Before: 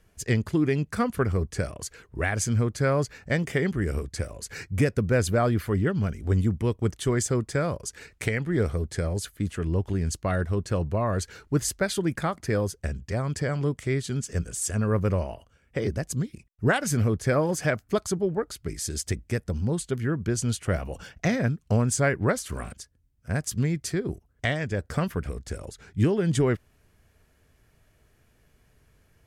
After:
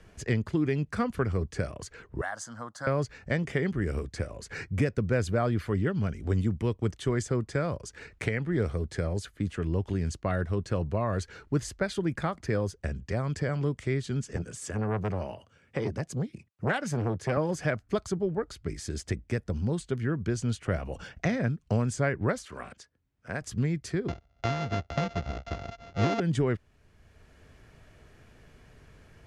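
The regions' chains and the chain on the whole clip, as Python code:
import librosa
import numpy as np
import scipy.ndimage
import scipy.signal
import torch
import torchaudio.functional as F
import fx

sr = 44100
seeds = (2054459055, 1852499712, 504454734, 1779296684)

y = fx.chain(x, sr, fx.highpass(hz=500.0, slope=12),
    fx.fixed_phaser(hz=990.0, stages=4), at=(2.21, 2.87))
y = fx.chain(y, sr, fx.highpass(hz=92.0, slope=24),
    fx.notch(hz=680.0, q=21.0),
    fx.transformer_sat(knee_hz=670.0), at=(14.36, 17.37))
y = fx.chain(y, sr, fx.highpass(hz=490.0, slope=6),
    fx.high_shelf(hz=6400.0, db=-8.5), at=(22.45, 23.41))
y = fx.chain(y, sr, fx.sample_sort(block=64),
    fx.resample_bad(factor=3, down='none', up='filtered'),
    fx.air_absorb(metres=57.0), at=(24.08, 26.2))
y = scipy.signal.sosfilt(scipy.signal.butter(2, 10000.0, 'lowpass', fs=sr, output='sos'), y)
y = fx.high_shelf(y, sr, hz=7100.0, db=-11.0)
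y = fx.band_squash(y, sr, depth_pct=40)
y = F.gain(torch.from_numpy(y), -3.0).numpy()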